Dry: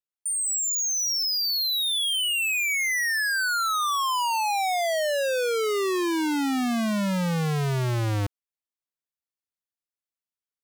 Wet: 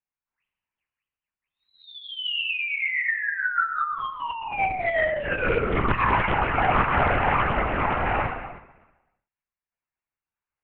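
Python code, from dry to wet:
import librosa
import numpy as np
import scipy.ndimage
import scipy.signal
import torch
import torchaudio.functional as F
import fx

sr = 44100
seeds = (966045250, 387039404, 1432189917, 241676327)

y = scipy.signal.sosfilt(scipy.signal.butter(2, 580.0, 'highpass', fs=sr, output='sos'), x)
y = fx.dereverb_blind(y, sr, rt60_s=0.89)
y = scipy.signal.sosfilt(scipy.signal.butter(12, 2700.0, 'lowpass', fs=sr, output='sos'), y)
y = fx.peak_eq(y, sr, hz=2000.0, db=-4.0, octaves=2.0)
y = y + 0.81 * np.pad(y, (int(6.9 * sr / 1000.0), 0))[:len(y)]
y = fx.dynamic_eq(y, sr, hz=1200.0, q=3.8, threshold_db=-43.0, ratio=4.0, max_db=5)
y = fx.over_compress(y, sr, threshold_db=-31.0, ratio=-0.5)
y = fx.tremolo_random(y, sr, seeds[0], hz=3.5, depth_pct=55)
y = fx.echo_feedback(y, sr, ms=127, feedback_pct=59, wet_db=-20)
y = fx.rev_gated(y, sr, seeds[1], gate_ms=390, shape='falling', drr_db=1.5)
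y = fx.lpc_vocoder(y, sr, seeds[2], excitation='whisper', order=8)
y = fx.doppler_dist(y, sr, depth_ms=0.52)
y = y * librosa.db_to_amplitude(8.5)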